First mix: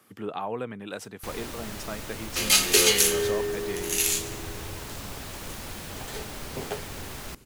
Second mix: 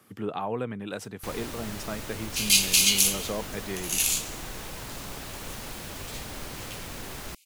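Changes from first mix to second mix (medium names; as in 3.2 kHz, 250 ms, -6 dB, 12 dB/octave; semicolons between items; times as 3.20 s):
speech: add bass shelf 210 Hz +7 dB; second sound: add steep high-pass 2.2 kHz 96 dB/octave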